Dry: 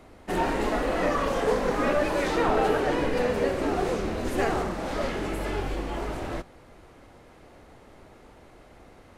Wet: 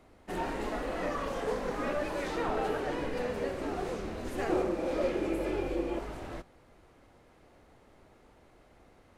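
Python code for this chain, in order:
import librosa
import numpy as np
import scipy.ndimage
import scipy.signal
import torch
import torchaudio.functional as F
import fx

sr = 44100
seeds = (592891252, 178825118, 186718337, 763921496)

y = fx.small_body(x, sr, hz=(350.0, 510.0, 2400.0), ring_ms=45, db=14, at=(4.49, 5.99))
y = F.gain(torch.from_numpy(y), -8.5).numpy()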